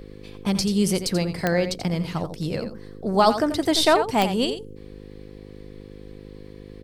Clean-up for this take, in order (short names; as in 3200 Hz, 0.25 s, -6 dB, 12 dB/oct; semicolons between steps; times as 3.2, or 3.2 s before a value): de-click; de-hum 51.2 Hz, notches 10; inverse comb 86 ms -10 dB